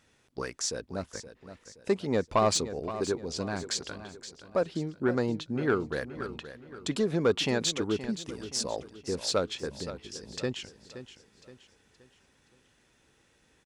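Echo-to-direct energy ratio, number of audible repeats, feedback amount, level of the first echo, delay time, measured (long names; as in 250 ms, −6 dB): −11.5 dB, 3, 40%, −12.5 dB, 522 ms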